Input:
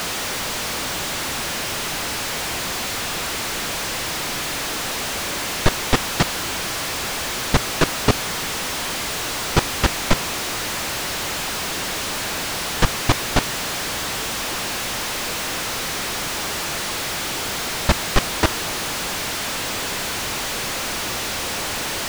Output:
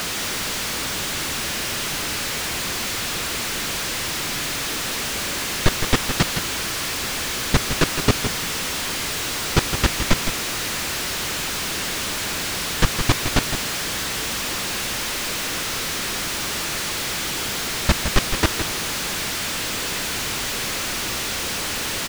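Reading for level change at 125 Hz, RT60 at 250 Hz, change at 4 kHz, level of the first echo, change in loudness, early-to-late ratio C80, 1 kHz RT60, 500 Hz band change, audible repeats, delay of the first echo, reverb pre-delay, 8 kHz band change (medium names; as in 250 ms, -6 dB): +0.5 dB, no reverb, +0.5 dB, -8.5 dB, 0.0 dB, no reverb, no reverb, -2.0 dB, 1, 163 ms, no reverb, +0.5 dB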